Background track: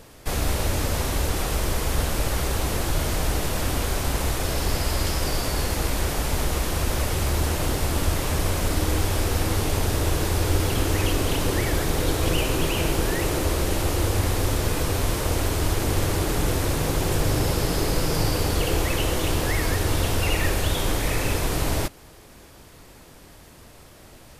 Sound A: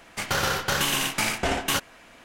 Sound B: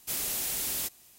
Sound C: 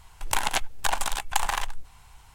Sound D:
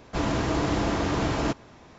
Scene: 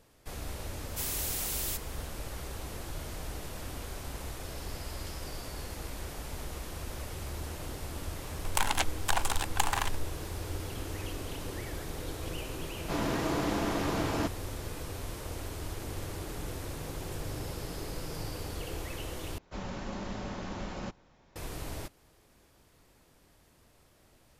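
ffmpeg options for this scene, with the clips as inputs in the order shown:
-filter_complex "[4:a]asplit=2[a][b];[0:a]volume=-15.5dB[c];[a]highpass=130[d];[b]afreqshift=-98[e];[c]asplit=2[f][g];[f]atrim=end=19.384[h];[e]atrim=end=1.98,asetpts=PTS-STARTPTS,volume=-12.5dB[i];[g]atrim=start=21.356[j];[2:a]atrim=end=1.18,asetpts=PTS-STARTPTS,volume=-3dB,afade=t=in:d=0.004:c=hsin,afade=t=out:st=1.176:d=0.004:c=hsin,adelay=890[k];[3:a]atrim=end=2.34,asetpts=PTS-STARTPTS,volume=-3.5dB,afade=t=in:d=0.004:c=hsin,afade=t=out:st=2.336:d=0.004:c=hsin,adelay=8240[l];[d]atrim=end=1.98,asetpts=PTS-STARTPTS,volume=-5dB,afade=t=in:d=0.004:c=hsin,afade=t=out:st=1.976:d=0.004:c=hsin,adelay=12750[m];[h][i]acrossfade=d=0.004:c1=hsin:c2=hsin[n];[n][j]acrossfade=d=0.004:c1=hsin:c2=hsin[o];[o][k][l][m]amix=inputs=4:normalize=0"

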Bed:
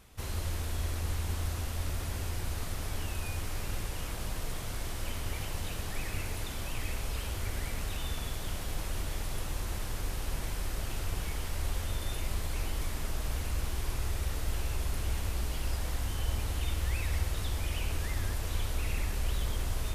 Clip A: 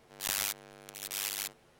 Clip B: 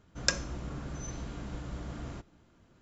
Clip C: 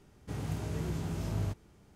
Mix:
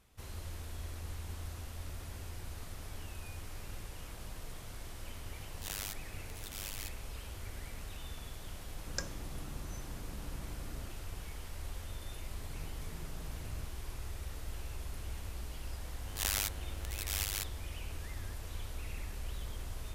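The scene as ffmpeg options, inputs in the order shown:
-filter_complex "[1:a]asplit=2[a][b];[0:a]volume=-9.5dB[c];[2:a]equalizer=f=2.9k:t=o:w=0.77:g=-15[d];[a]atrim=end=1.79,asetpts=PTS-STARTPTS,volume=-9dB,afade=t=in:d=0.004:c=hsin,afade=t=out:st=1.786:d=0.004:c=hsin,adelay=238581S[e];[d]atrim=end=2.81,asetpts=PTS-STARTPTS,volume=-8.5dB,afade=t=in:d=0.004:c=hsin,afade=t=out:st=2.806:d=0.004:c=hsin,adelay=8700[f];[3:a]atrim=end=1.95,asetpts=PTS-STARTPTS,volume=-16dB,afade=t=in:d=0.004:c=hsin,afade=t=out:st=1.946:d=0.004:c=hsin,adelay=12120[g];[b]atrim=end=1.79,asetpts=PTS-STARTPTS,volume=-1.5dB,afade=t=in:d=0.004:c=hsin,afade=t=out:st=1.786:d=0.004:c=hsin,adelay=15960[h];[c][e][f][g][h]amix=inputs=5:normalize=0"

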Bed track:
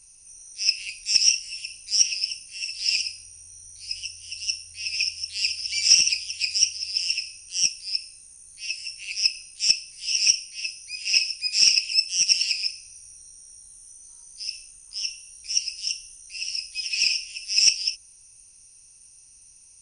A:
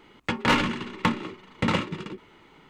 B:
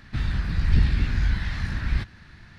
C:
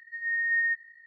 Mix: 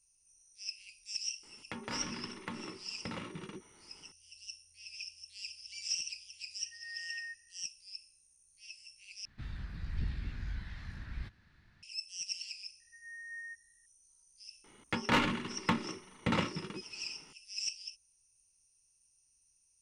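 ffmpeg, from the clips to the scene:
-filter_complex "[1:a]asplit=2[a][b];[3:a]asplit=2[c][d];[0:a]volume=-19.5dB[e];[a]acompressor=threshold=-28dB:ratio=6:attack=3.2:release=140:knee=1:detection=peak[f];[d]lowpass=1.6k[g];[e]asplit=2[h][i];[h]atrim=end=9.254[j];[2:a]atrim=end=2.58,asetpts=PTS-STARTPTS,volume=-17dB[k];[i]atrim=start=11.826[l];[f]atrim=end=2.69,asetpts=PTS-STARTPTS,volume=-9.5dB,afade=t=in:d=0.004:c=hsin,afade=t=out:st=2.686:d=0.004:c=hsin,adelay=1430[m];[c]atrim=end=1.06,asetpts=PTS-STARTPTS,volume=-17.5dB,afade=t=in:d=0.004:c=hsin,afade=t=out:st=1.056:d=0.004:c=hsin,adelay=6590[n];[g]atrim=end=1.06,asetpts=PTS-STARTPTS,volume=-15dB,afade=t=in:d=0.004:c=hsin,afade=t=out:st=1.056:d=0.004:c=hsin,adelay=12800[o];[b]atrim=end=2.69,asetpts=PTS-STARTPTS,volume=-7dB,afade=t=in:d=0.004:c=hsin,afade=t=out:st=2.686:d=0.004:c=hsin,adelay=14640[p];[j][k]acrossfade=d=0.004:c1=hsin:c2=hsin[q];[q][l]acrossfade=d=0.004:c1=hsin:c2=hsin[r];[r][m][n][o][p]amix=inputs=5:normalize=0"

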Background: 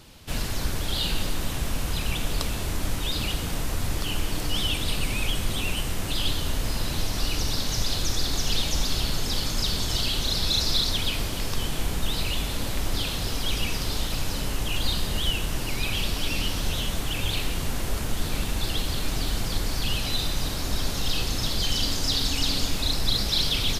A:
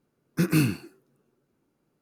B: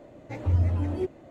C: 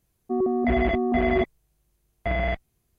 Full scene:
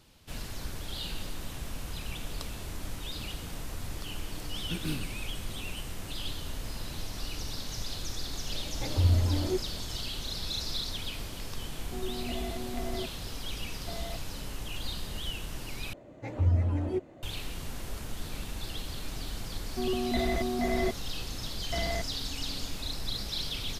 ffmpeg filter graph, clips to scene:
-filter_complex "[2:a]asplit=2[a][b];[3:a]asplit=2[c][d];[0:a]volume=-10.5dB[e];[c]lowpass=1.4k[f];[e]asplit=2[g][h];[g]atrim=end=15.934[i];[b]atrim=end=1.3,asetpts=PTS-STARTPTS,volume=-2dB[j];[h]atrim=start=17.226[k];[1:a]atrim=end=2.01,asetpts=PTS-STARTPTS,volume=-13.5dB,afade=t=in:d=0.004:c=hsin,afade=t=out:st=2.006:d=0.004:c=hsin,adelay=4320[l];[a]atrim=end=1.3,asetpts=PTS-STARTPTS,volume=-1dB,afade=t=in:d=0.004:c=hsin,afade=t=out:st=1.296:d=0.004:c=hsin,adelay=8510[m];[f]atrim=end=2.98,asetpts=PTS-STARTPTS,volume=-15dB,afade=t=in:d=0.004:c=hsin,afade=t=out:st=2.976:d=0.004:c=hsin,adelay=512442S[n];[d]atrim=end=2.98,asetpts=PTS-STARTPTS,volume=-7.5dB,afade=t=in:d=0.004:c=hsin,afade=t=out:st=2.976:d=0.004:c=hsin,adelay=19470[o];[i][j]acrossfade=d=0.004:c1=hsin:c2=hsin[p];[p][k]acrossfade=d=0.004:c1=hsin:c2=hsin[q];[q][l][m][n][o]amix=inputs=5:normalize=0"

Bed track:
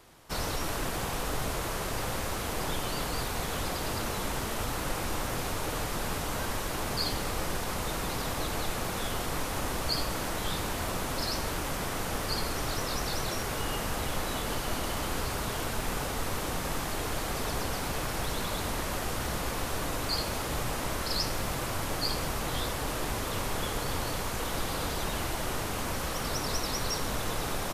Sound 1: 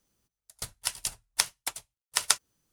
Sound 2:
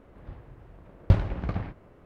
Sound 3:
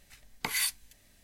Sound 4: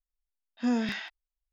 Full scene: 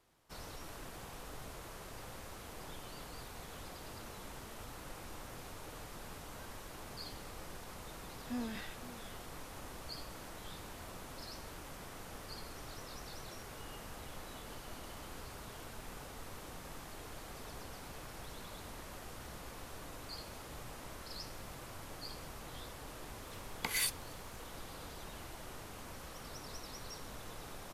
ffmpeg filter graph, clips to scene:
-filter_complex "[0:a]volume=-16dB[a];[4:a]aecho=1:1:519:0.188,atrim=end=1.52,asetpts=PTS-STARTPTS,volume=-13dB,afade=t=in:d=0.004:c=hsin,afade=t=out:st=1.516:d=0.004:c=hsin,adelay=7670[b];[3:a]atrim=end=1.23,asetpts=PTS-STARTPTS,volume=-4.5dB,afade=t=in:d=0.004:c=hsin,afade=t=out:st=1.226:d=0.004:c=hsin,adelay=23200[c];[a][b][c]amix=inputs=3:normalize=0"

